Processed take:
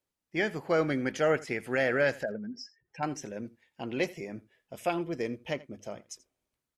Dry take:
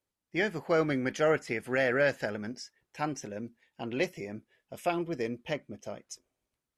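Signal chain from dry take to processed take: 2.23–3.03 spectral contrast raised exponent 2.1; notches 50/100 Hz; echo 83 ms -20.5 dB

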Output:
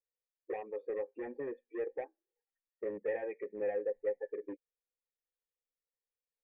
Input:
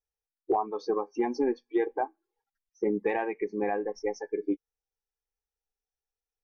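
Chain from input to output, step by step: hard clip -26.5 dBFS, distortion -10 dB; vocal tract filter e; gain +3.5 dB

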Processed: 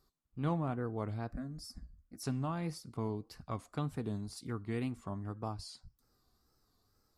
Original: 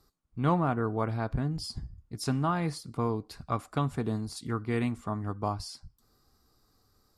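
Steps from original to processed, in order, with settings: dynamic EQ 1200 Hz, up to -5 dB, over -41 dBFS, Q 0.76; 1.31–2.24 fixed phaser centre 590 Hz, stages 8; wow and flutter 110 cents; gain -6.5 dB

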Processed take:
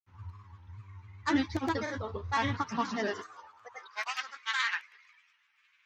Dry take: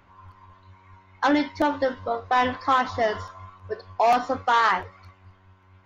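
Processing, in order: grains, pitch spread up and down by 3 st; fifteen-band EQ 100 Hz +5 dB, 630 Hz -12 dB, 6300 Hz +6 dB; high-pass sweep 85 Hz -> 2200 Hz, 2.43–4.23; gain -4.5 dB

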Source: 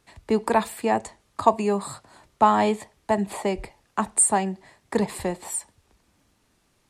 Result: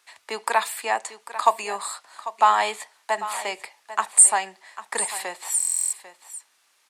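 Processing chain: HPF 1100 Hz 12 dB/oct; echo 0.796 s -14 dB; stuck buffer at 5.58, samples 1024, times 14; gain +6 dB

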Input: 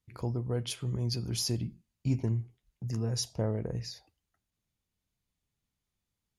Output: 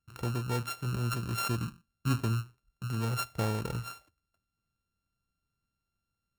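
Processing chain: sample sorter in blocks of 32 samples

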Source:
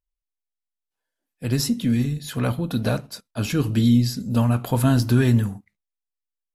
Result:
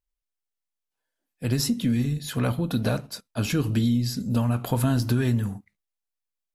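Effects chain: compressor, threshold -19 dBFS, peak gain reduction 7 dB

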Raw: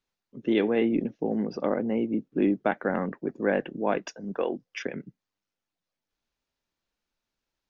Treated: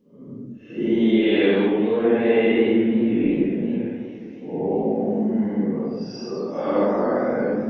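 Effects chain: Paulstretch 5×, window 0.10 s, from 0.3; warbling echo 0.209 s, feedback 78%, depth 181 cents, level -16 dB; gain +5 dB

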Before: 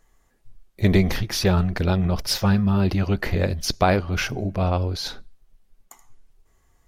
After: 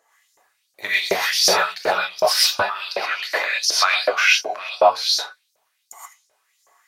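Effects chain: non-linear reverb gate 0.15 s rising, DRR -7.5 dB; LFO high-pass saw up 2.7 Hz 510–6200 Hz; 2.62–4.76 weighting filter A

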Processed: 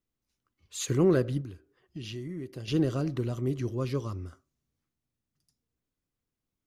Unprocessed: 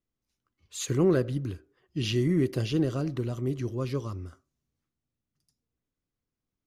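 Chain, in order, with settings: 1.41–2.68 compressor 2.5:1, threshold -42 dBFS, peak gain reduction 14 dB

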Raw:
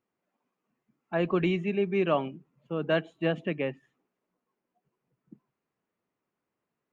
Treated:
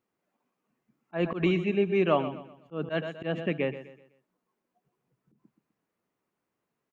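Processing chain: feedback echo 0.126 s, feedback 37%, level -13 dB; auto swell 0.116 s; gain +1.5 dB

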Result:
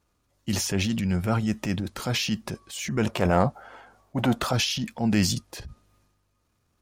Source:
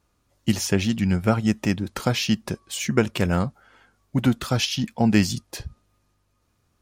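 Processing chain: 3.06–4.53 bell 720 Hz +13.5 dB 1.4 oct; transient shaper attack -6 dB, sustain +6 dB; gain -3 dB

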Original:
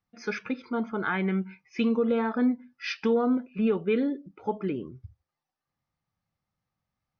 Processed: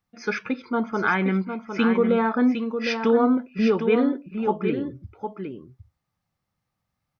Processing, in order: dynamic EQ 1100 Hz, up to +4 dB, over -40 dBFS, Q 1.1; on a send: echo 0.757 s -7.5 dB; on the sum: gain +4 dB

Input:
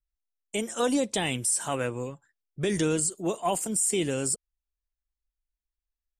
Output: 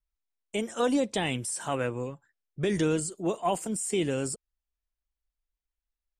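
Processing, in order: high shelf 6100 Hz -11.5 dB

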